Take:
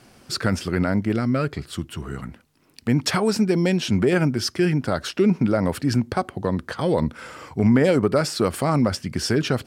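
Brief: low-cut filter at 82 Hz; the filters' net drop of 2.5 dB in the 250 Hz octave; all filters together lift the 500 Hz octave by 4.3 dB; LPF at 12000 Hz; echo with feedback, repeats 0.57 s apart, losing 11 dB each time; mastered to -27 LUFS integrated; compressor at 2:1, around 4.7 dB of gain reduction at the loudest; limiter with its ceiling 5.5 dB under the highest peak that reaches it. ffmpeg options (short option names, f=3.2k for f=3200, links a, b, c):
-af "highpass=82,lowpass=12k,equalizer=f=250:t=o:g=-5.5,equalizer=f=500:t=o:g=7,acompressor=threshold=-20dB:ratio=2,alimiter=limit=-13.5dB:level=0:latency=1,aecho=1:1:570|1140|1710:0.282|0.0789|0.0221,volume=-1.5dB"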